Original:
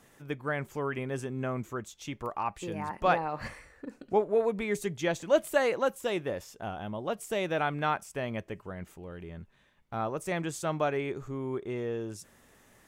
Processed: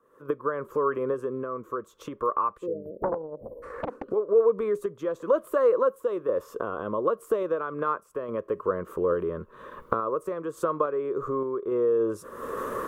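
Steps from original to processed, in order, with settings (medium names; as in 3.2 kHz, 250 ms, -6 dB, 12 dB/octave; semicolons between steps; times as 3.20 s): recorder AGC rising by 55 dB/s; three-band isolator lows -19 dB, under 540 Hz, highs -20 dB, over 3.5 kHz; 2.67–3.63 s: spectral selection erased 670–11000 Hz; FFT filter 120 Hz 0 dB, 500 Hz +9 dB, 780 Hz -21 dB, 1.1 kHz +5 dB, 2.1 kHz -23 dB, 4.8 kHz -15 dB, 12 kHz +2 dB; random-step tremolo; 3.03–4.04 s: loudspeaker Doppler distortion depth 1 ms; trim +6 dB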